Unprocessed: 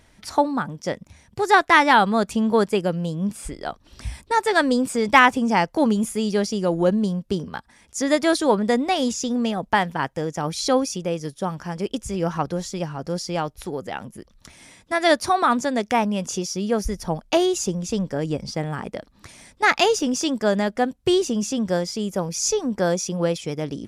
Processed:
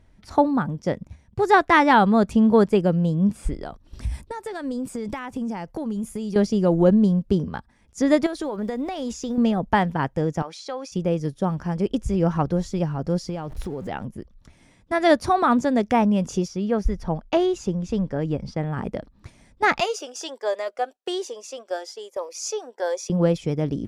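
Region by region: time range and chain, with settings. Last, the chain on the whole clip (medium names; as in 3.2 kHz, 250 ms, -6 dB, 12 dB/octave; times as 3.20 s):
3.63–6.36 s: treble shelf 8 kHz +11 dB + compression, threshold -29 dBFS
8.26–9.38 s: block-companded coder 7-bit + peaking EQ 140 Hz -13 dB 1.3 oct + compression 16:1, threshold -25 dBFS
10.42–10.92 s: band-pass 630–7400 Hz + compression 3:1, threshold -29 dBFS
13.29–13.89 s: jump at every zero crossing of -40 dBFS + compression 5:1, threshold -29 dBFS
16.48–18.77 s: low-pass 1.9 kHz 6 dB/octave + tilt shelf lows -4.5 dB
19.80–23.10 s: inverse Chebyshev high-pass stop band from 190 Hz, stop band 50 dB + Shepard-style phaser rising 1.2 Hz
whole clip: tilt EQ -2.5 dB/octave; gate -37 dBFS, range -7 dB; trim -1 dB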